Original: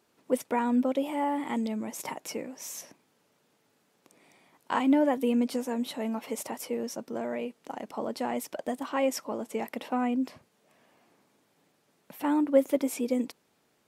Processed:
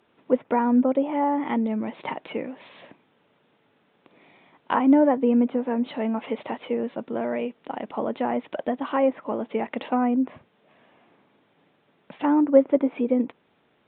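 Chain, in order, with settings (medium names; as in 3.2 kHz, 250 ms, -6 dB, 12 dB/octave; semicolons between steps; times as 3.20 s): resampled via 8 kHz; low-pass that closes with the level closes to 1.5 kHz, closed at -26 dBFS; trim +6 dB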